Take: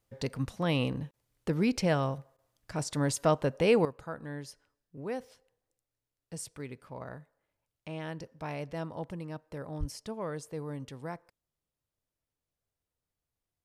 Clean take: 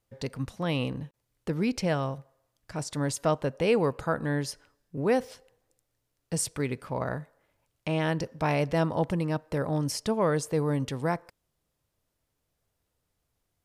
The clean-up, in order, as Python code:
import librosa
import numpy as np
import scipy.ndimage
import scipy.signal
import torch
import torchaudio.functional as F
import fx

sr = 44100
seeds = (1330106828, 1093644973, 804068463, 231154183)

y = fx.highpass(x, sr, hz=140.0, slope=24, at=(9.79, 9.91), fade=0.02)
y = fx.fix_interpolate(y, sr, at_s=(2.37,), length_ms=13.0)
y = fx.fix_level(y, sr, at_s=3.85, step_db=11.5)